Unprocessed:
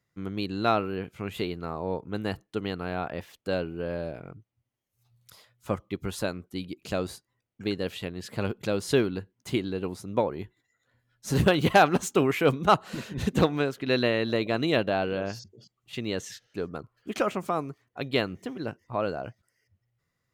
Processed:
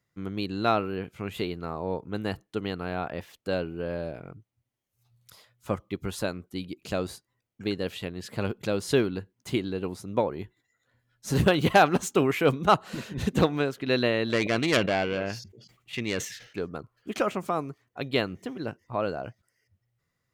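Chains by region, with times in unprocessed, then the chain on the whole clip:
14.30–16.59 s: self-modulated delay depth 0.16 ms + peaking EQ 2.2 kHz +8 dB 0.82 oct + decay stretcher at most 100 dB/s
whole clip: none

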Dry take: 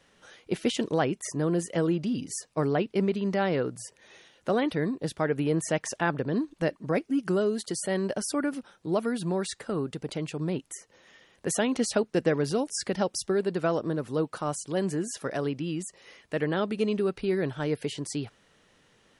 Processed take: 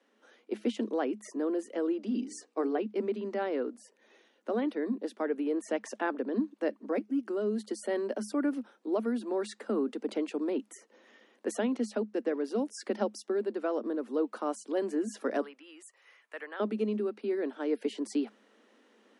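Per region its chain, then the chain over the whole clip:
2.06–2.80 s: steep low-pass 9.7 kHz 96 dB/octave + hum notches 60/120/180/240/300/360/420/480 Hz + comb 2.6 ms, depth 30%
15.41–16.60 s: high-pass 1.3 kHz + peaking EQ 4.6 kHz -9.5 dB 1.6 oct
whole clip: Chebyshev high-pass 210 Hz, order 10; tilt EQ -2.5 dB/octave; gain riding 0.5 s; trim -5.5 dB

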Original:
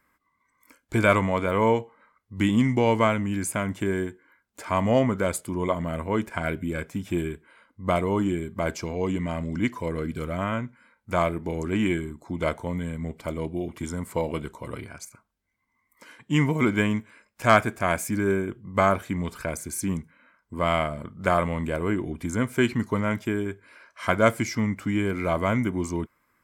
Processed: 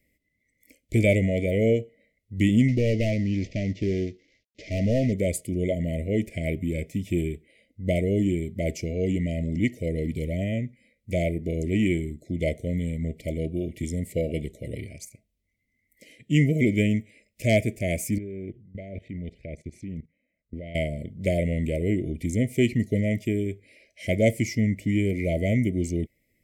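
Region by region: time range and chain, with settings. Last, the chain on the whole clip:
2.68–5.13 s: CVSD coder 32 kbps + hard clipper -19.5 dBFS
18.18–20.75 s: low-pass 2.5 kHz + level held to a coarse grid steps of 18 dB
whole clip: dynamic bell 3.8 kHz, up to -6 dB, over -54 dBFS, Q 4.3; Chebyshev band-stop 650–1900 Hz, order 5; bass shelf 150 Hz +7 dB

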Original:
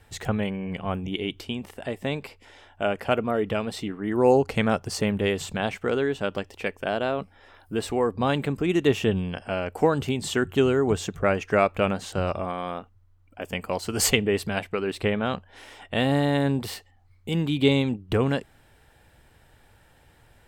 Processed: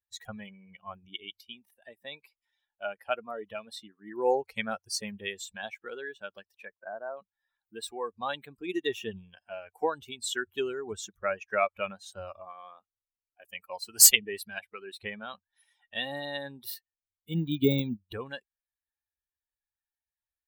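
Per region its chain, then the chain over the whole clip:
6.65–7.17 s: expander -44 dBFS + low-pass 1.7 kHz 24 dB/octave
17.29–18.09 s: companding laws mixed up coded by A + de-esser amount 85% + bass shelf 370 Hz +11.5 dB
whole clip: expander on every frequency bin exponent 2; RIAA curve recording; trim -2 dB

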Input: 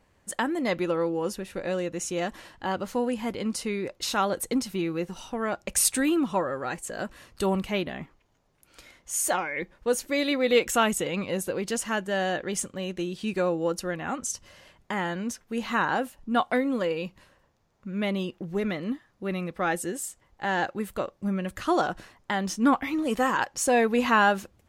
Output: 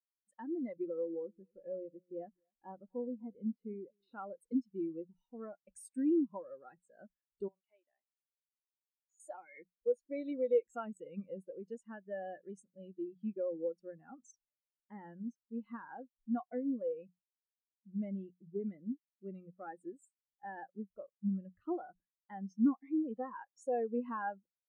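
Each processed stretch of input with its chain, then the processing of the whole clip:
0.85–4.13 s: distance through air 260 m + delay 246 ms -17.5 dB
7.48–9.20 s: companding laws mixed up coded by A + compression 3:1, threshold -33 dBFS + band-pass 540–6800 Hz
whole clip: hum notches 60/120/180 Hz; compression 2.5:1, threshold -26 dBFS; spectral contrast expander 2.5:1; trim -6 dB

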